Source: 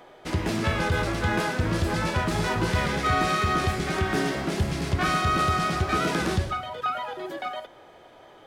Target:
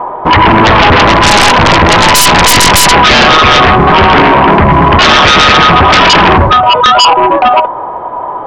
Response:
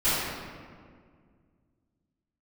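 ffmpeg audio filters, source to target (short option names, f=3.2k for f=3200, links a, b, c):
-filter_complex "[0:a]lowpass=f=1k:t=q:w=9.8,asplit=3[a][b][c];[a]afade=t=out:st=1.04:d=0.02[d];[b]aeval=exprs='0.562*(cos(1*acos(clip(val(0)/0.562,-1,1)))-cos(1*PI/2))+0.178*(cos(4*acos(clip(val(0)/0.562,-1,1)))-cos(4*PI/2))':c=same,afade=t=in:st=1.04:d=0.02,afade=t=out:st=2.92:d=0.02[e];[c]afade=t=in:st=2.92:d=0.02[f];[d][e][f]amix=inputs=3:normalize=0,aeval=exprs='0.794*sin(PI/2*8.91*val(0)/0.794)':c=same,volume=1dB"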